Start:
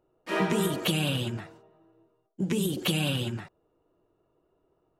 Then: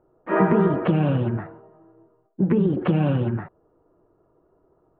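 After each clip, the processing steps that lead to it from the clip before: low-pass 1.6 kHz 24 dB/octave; trim +8.5 dB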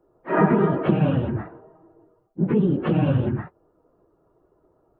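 phase randomisation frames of 50 ms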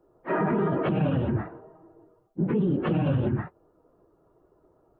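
peak limiter -17 dBFS, peak gain reduction 11.5 dB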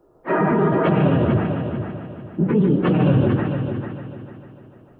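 multi-head delay 149 ms, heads first and third, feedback 48%, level -8 dB; trim +6.5 dB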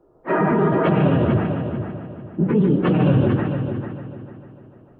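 tape noise reduction on one side only decoder only

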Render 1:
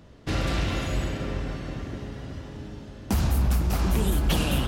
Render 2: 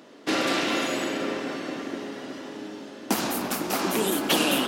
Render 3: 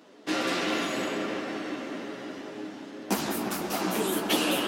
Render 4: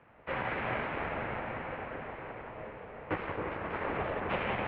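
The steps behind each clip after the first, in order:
Chebyshev high-pass 270 Hz, order 3; trim +6.5 dB
chorus voices 4, 1.2 Hz, delay 13 ms, depth 3.8 ms; feedback echo behind a low-pass 175 ms, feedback 78%, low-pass 2.3 kHz, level -8.5 dB; trim -1 dB
full-wave rectifier; echo whose repeats swap between lows and highs 266 ms, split 960 Hz, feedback 51%, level -6 dB; mistuned SSB -92 Hz 150–2500 Hz

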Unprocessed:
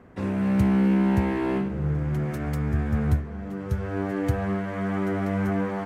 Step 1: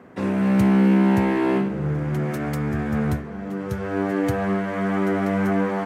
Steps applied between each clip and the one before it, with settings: high-pass 160 Hz 12 dB/octave; trim +5.5 dB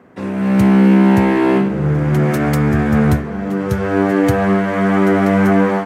level rider gain up to 11 dB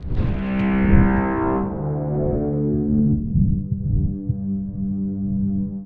wind noise 110 Hz -16 dBFS; crackle 30 per s -25 dBFS; low-pass sweep 4.1 kHz -> 150 Hz, 0.15–3.67 s; trim -9 dB

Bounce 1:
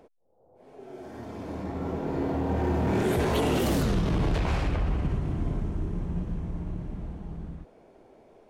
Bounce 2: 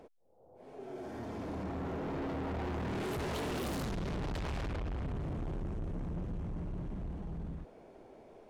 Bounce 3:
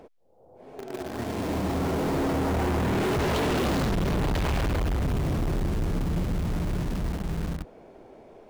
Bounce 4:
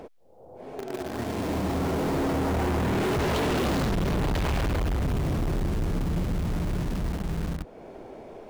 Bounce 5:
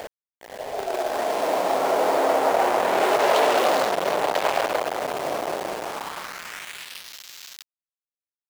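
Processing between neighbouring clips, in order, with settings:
treble shelf 12 kHz -4 dB; saturation -35 dBFS, distortion -6 dB
median filter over 5 samples; in parallel at -12 dB: companded quantiser 2-bit; on the sum: trim +6 dB
compression 1.5:1, threshold -44 dBFS, peak gain reduction 6.5 dB; trim +6.5 dB
high-pass sweep 620 Hz -> 3.7 kHz, 5.76–7.18 s; small samples zeroed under -40 dBFS; trim +6 dB

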